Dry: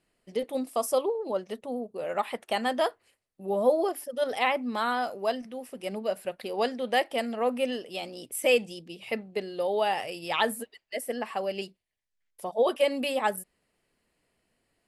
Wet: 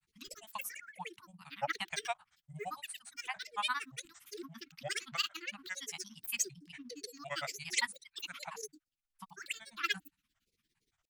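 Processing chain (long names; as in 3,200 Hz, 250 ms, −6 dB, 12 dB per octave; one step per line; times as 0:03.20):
Chebyshev band-stop filter 200–910 Hz, order 4
granular cloud, grains 13 per second, pitch spread up and down by 12 semitones
change of speed 1.34×
level −1.5 dB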